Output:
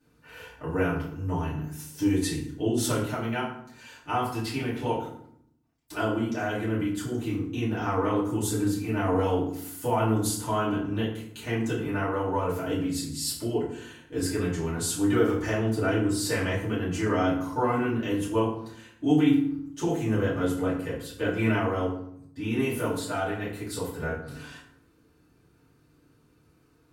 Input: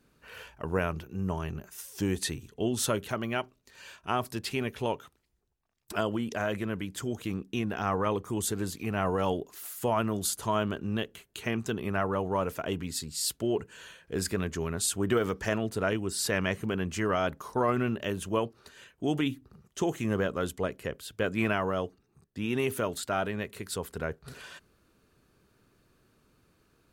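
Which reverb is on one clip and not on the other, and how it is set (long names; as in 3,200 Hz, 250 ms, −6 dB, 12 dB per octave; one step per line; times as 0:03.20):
feedback delay network reverb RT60 0.67 s, low-frequency decay 1.55×, high-frequency decay 0.65×, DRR −9.5 dB
level −8.5 dB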